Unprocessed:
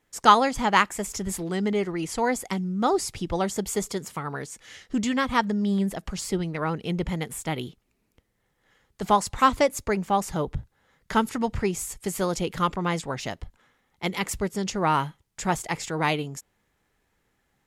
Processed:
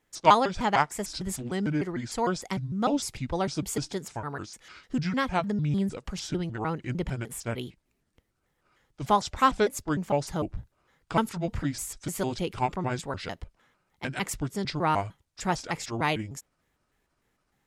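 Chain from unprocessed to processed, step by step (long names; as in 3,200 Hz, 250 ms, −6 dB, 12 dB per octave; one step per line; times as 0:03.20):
pitch shifter gated in a rhythm −5.5 semitones, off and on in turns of 151 ms
level −2.5 dB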